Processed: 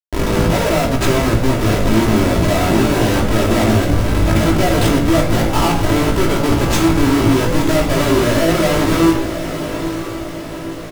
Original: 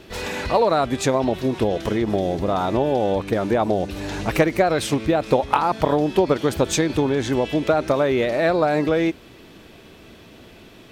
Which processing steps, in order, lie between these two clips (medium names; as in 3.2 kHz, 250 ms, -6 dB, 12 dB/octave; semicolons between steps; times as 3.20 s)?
Schmitt trigger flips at -24 dBFS; valve stage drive 24 dB, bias 0.55; doubling 18 ms -5 dB; echo that smears into a reverb 936 ms, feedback 54%, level -9 dB; reverberation RT60 0.75 s, pre-delay 3 ms, DRR 0 dB; trim +6 dB